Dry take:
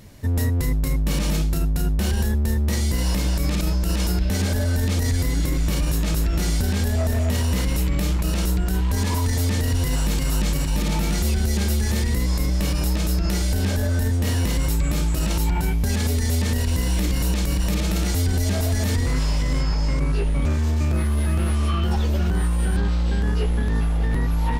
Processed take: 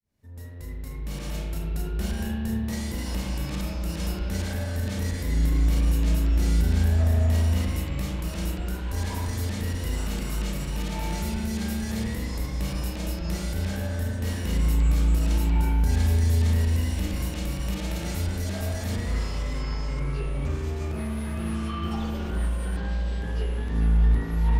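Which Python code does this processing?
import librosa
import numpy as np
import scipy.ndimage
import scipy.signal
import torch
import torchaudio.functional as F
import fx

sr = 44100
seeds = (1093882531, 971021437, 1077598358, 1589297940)

y = fx.fade_in_head(x, sr, length_s=1.77)
y = fx.rev_spring(y, sr, rt60_s=1.7, pass_ms=(36,), chirp_ms=70, drr_db=-1.0)
y = y * librosa.db_to_amplitude(-9.0)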